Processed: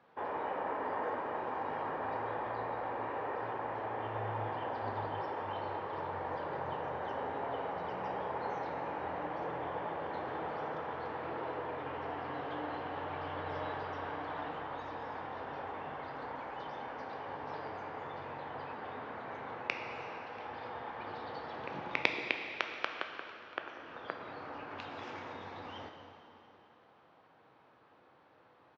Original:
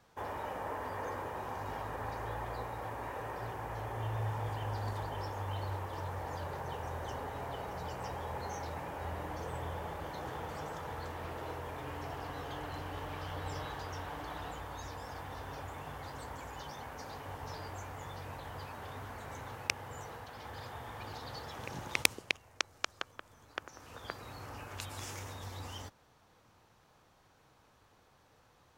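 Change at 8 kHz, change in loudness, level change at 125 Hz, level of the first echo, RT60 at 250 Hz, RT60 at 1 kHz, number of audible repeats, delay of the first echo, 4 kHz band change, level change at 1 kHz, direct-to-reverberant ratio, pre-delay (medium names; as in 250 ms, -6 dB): under -20 dB, +1.5 dB, -8.0 dB, -24.0 dB, 2.8 s, 2.9 s, 1, 686 ms, -4.0 dB, +3.5 dB, 3.5 dB, 5 ms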